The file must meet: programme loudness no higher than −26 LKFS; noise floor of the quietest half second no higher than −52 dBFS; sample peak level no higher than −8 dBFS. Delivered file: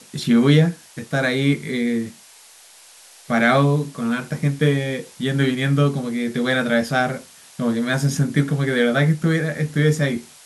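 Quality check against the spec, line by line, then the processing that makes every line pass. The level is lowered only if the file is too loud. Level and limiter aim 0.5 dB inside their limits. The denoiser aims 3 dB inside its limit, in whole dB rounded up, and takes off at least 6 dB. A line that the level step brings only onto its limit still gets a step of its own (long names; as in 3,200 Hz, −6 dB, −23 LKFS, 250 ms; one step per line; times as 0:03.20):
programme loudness −20.0 LKFS: out of spec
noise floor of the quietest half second −47 dBFS: out of spec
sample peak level −3.5 dBFS: out of spec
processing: level −6.5 dB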